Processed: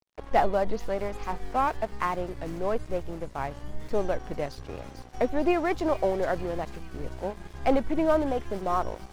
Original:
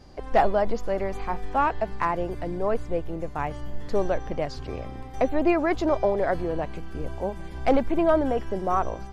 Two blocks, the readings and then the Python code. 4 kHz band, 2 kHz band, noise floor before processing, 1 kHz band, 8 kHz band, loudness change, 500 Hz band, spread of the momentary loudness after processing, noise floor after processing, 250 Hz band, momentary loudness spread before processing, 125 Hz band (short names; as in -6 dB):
-0.5 dB, -2.5 dB, -38 dBFS, -2.5 dB, n/a, -2.5 dB, -3.0 dB, 12 LU, -47 dBFS, -3.0 dB, 11 LU, -3.5 dB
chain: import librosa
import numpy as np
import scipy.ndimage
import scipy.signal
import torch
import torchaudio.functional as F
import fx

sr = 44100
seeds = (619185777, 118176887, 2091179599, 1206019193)

y = fx.vibrato(x, sr, rate_hz=1.1, depth_cents=88.0)
y = np.sign(y) * np.maximum(np.abs(y) - 10.0 ** (-40.5 / 20.0), 0.0)
y = fx.echo_wet_highpass(y, sr, ms=445, feedback_pct=62, hz=5300.0, wet_db=-3.5)
y = y * 10.0 ** (-2.0 / 20.0)